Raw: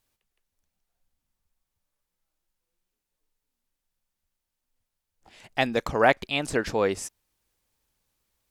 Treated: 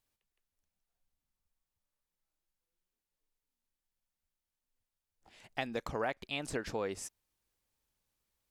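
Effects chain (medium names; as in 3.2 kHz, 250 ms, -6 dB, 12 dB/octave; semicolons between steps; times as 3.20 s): compression 4:1, threshold -25 dBFS, peak gain reduction 10 dB; trim -7.5 dB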